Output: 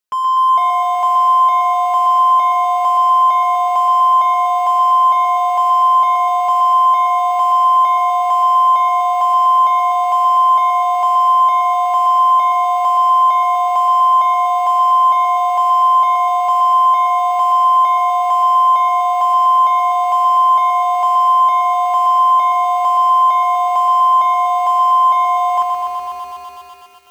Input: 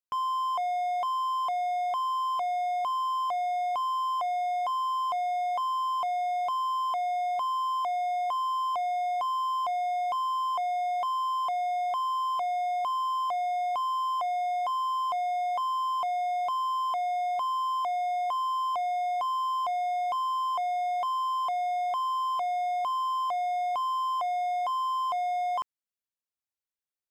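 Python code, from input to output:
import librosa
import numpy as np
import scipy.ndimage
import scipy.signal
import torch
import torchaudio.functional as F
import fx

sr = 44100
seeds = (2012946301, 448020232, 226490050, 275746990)

y = fx.low_shelf(x, sr, hz=370.0, db=-5.5)
y = y + 0.62 * np.pad(y, (int(4.7 * sr / 1000.0), 0))[:len(y)]
y = fx.echo_crushed(y, sr, ms=124, feedback_pct=80, bits=9, wet_db=-5.0)
y = F.gain(torch.from_numpy(y), 8.5).numpy()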